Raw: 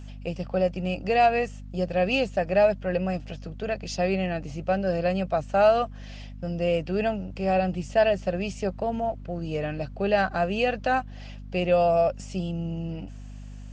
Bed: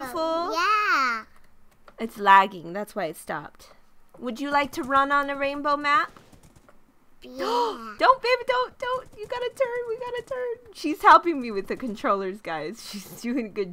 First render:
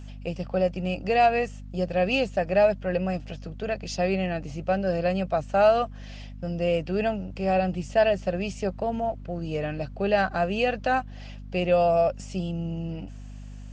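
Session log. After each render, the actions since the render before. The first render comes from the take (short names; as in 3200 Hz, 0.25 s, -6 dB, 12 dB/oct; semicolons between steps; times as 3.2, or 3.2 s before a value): nothing audible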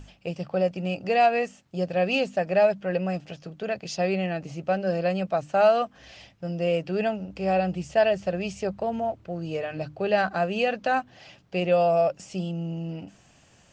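notches 50/100/150/200/250/300 Hz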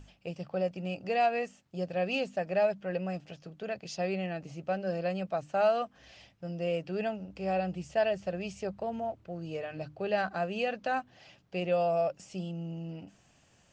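gain -7 dB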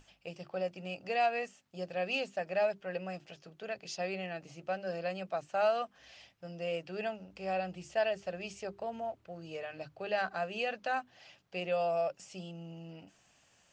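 low shelf 460 Hz -9.5 dB; notches 50/100/150/200/250/300/350/400 Hz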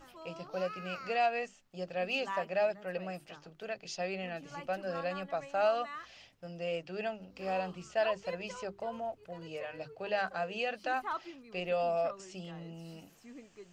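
add bed -23.5 dB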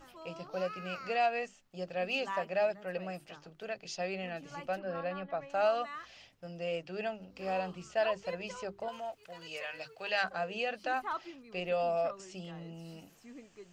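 4.79–5.5 air absorption 240 m; 8.88–10.24 tilt shelf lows -9 dB, about 900 Hz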